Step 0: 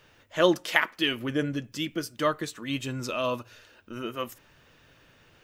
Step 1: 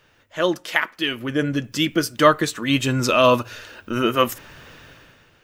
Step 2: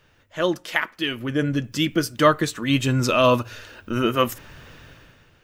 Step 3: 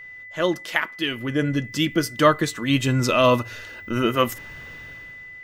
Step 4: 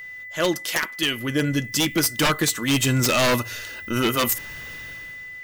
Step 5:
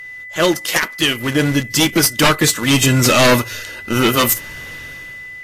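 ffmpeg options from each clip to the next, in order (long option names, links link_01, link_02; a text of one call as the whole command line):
ffmpeg -i in.wav -af "equalizer=frequency=1500:width_type=o:width=0.77:gain=2,dynaudnorm=framelen=120:gausssize=11:maxgain=15dB" out.wav
ffmpeg -i in.wav -af "lowshelf=frequency=160:gain=7.5,volume=-2.5dB" out.wav
ffmpeg -i in.wav -af "aeval=exprs='val(0)+0.0126*sin(2*PI*2000*n/s)':channel_layout=same" out.wav
ffmpeg -i in.wav -af "crystalizer=i=3:c=0,aeval=exprs='0.211*(abs(mod(val(0)/0.211+3,4)-2)-1)':channel_layout=same" out.wav
ffmpeg -i in.wav -filter_complex "[0:a]asplit=2[link_01][link_02];[link_02]acrusher=bits=3:mix=0:aa=0.000001,volume=-11dB[link_03];[link_01][link_03]amix=inputs=2:normalize=0,volume=4.5dB" -ar 32000 -c:a aac -b:a 48k out.aac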